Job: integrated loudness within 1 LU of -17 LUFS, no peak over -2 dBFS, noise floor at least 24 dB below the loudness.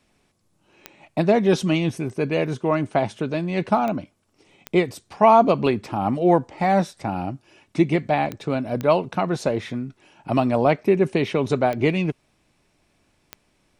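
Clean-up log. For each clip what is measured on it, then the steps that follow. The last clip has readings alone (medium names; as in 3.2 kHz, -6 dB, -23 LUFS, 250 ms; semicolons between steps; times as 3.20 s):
clicks found 7; loudness -22.0 LUFS; peak level -4.0 dBFS; loudness target -17.0 LUFS
-> de-click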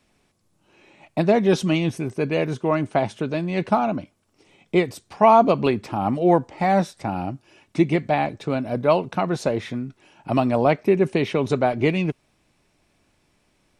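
clicks found 0; loudness -22.0 LUFS; peak level -4.0 dBFS; loudness target -17.0 LUFS
-> trim +5 dB; peak limiter -2 dBFS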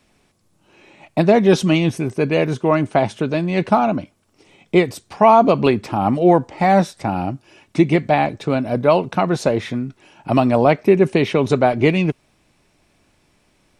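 loudness -17.5 LUFS; peak level -2.0 dBFS; noise floor -61 dBFS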